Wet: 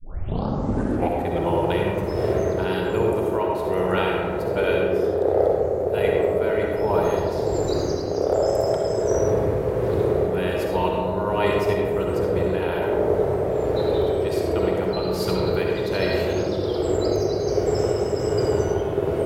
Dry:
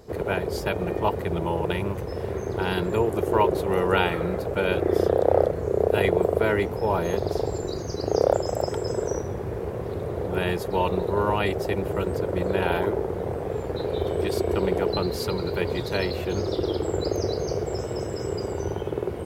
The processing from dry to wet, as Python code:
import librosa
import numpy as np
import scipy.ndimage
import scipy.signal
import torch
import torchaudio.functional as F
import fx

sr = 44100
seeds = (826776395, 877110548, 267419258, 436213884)

p1 = fx.tape_start_head(x, sr, length_s=1.26)
p2 = fx.rider(p1, sr, range_db=10, speed_s=0.5)
p3 = p2 + fx.echo_banded(p2, sr, ms=109, feedback_pct=83, hz=490.0, wet_db=-6.5, dry=0)
p4 = p3 * (1.0 - 0.37 / 2.0 + 0.37 / 2.0 * np.cos(2.0 * np.pi * 1.3 * (np.arange(len(p3)) / sr)))
y = fx.rev_freeverb(p4, sr, rt60_s=1.3, hf_ratio=0.5, predelay_ms=25, drr_db=0.0)